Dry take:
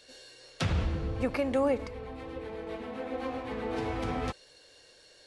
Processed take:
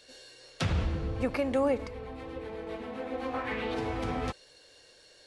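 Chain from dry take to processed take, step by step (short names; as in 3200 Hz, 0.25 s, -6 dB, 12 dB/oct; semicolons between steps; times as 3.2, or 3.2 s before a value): 3.33–3.73 bell 1100 Hz -> 3900 Hz +12 dB 1.2 oct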